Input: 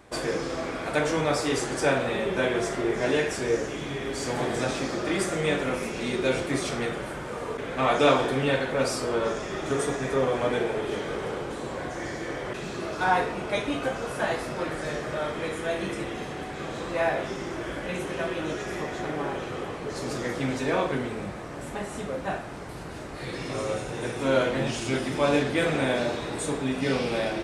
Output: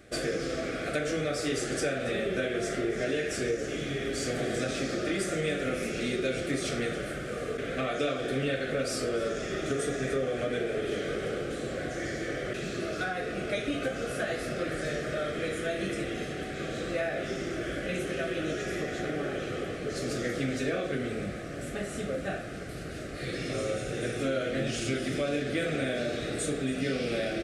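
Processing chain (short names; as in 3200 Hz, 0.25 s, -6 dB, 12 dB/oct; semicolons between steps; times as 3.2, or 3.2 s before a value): compressor 6:1, threshold -26 dBFS, peak gain reduction 11 dB; Butterworth band-stop 940 Hz, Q 1.7; echo 0.28 s -16.5 dB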